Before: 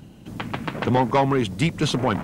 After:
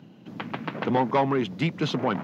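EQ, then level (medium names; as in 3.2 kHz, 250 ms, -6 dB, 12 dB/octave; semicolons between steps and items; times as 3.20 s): boxcar filter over 5 samples; high-pass 140 Hz 24 dB/octave; -3.0 dB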